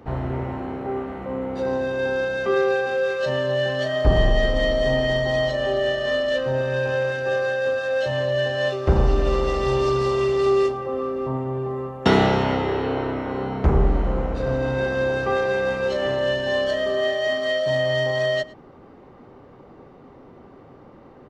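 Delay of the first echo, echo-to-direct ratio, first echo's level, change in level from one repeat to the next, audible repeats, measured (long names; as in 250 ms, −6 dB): 109 ms, −21.0 dB, −21.0 dB, repeats not evenly spaced, 1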